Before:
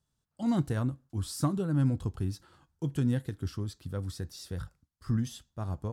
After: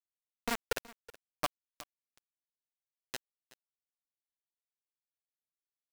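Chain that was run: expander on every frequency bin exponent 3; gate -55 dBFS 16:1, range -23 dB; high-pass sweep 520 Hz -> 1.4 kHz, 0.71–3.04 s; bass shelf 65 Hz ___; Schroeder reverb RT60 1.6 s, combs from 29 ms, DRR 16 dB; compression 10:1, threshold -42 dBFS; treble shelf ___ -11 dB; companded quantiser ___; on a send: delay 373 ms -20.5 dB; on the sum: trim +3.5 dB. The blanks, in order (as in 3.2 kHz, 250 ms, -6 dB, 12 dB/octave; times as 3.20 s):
+4.5 dB, 6.8 kHz, 2-bit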